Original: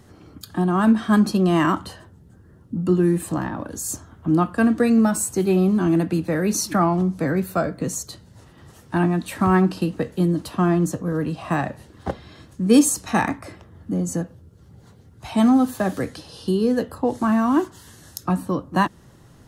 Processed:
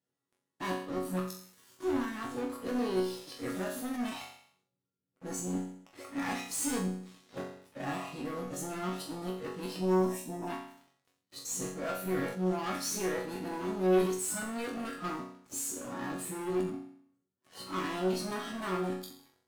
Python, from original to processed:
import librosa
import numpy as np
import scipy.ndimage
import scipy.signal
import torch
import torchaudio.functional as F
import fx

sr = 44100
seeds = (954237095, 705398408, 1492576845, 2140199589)

y = np.flip(x).copy()
y = scipy.signal.sosfilt(scipy.signal.butter(2, 250.0, 'highpass', fs=sr, output='sos'), y)
y = fx.peak_eq(y, sr, hz=840.0, db=-4.0, octaves=1.1)
y = fx.notch(y, sr, hz=1600.0, q=12.0)
y = fx.leveller(y, sr, passes=5)
y = fx.spec_box(y, sr, start_s=9.79, length_s=0.69, low_hz=1100.0, high_hz=5000.0, gain_db=-13)
y = fx.resonator_bank(y, sr, root=42, chord='sus4', decay_s=0.54)
y = fx.cheby_harmonics(y, sr, harmonics=(2,), levels_db=(-11,), full_scale_db=-11.0)
y = fx.sustainer(y, sr, db_per_s=93.0)
y = y * 10.0 ** (-7.5 / 20.0)